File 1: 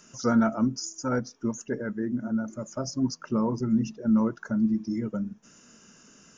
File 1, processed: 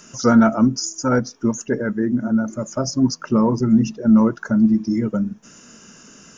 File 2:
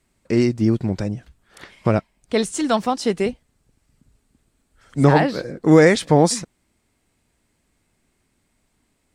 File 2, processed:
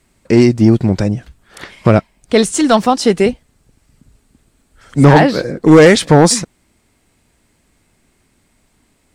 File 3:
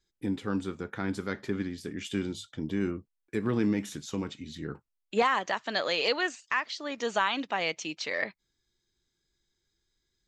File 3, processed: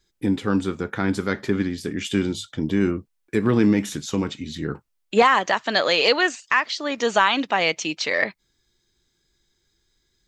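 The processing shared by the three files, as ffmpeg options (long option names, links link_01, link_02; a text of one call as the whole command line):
ffmpeg -i in.wav -af "asoftclip=type=hard:threshold=-8.5dB,acontrast=49,volume=3.5dB" out.wav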